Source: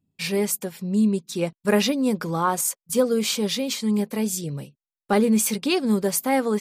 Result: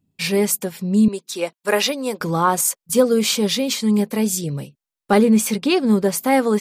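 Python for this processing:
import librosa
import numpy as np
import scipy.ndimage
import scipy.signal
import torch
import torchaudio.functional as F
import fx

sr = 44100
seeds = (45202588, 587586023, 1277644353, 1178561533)

y = fx.highpass(x, sr, hz=470.0, slope=12, at=(1.08, 2.21))
y = fx.high_shelf(y, sr, hz=4300.0, db=-6.5, at=(5.23, 6.21))
y = y * librosa.db_to_amplitude(5.0)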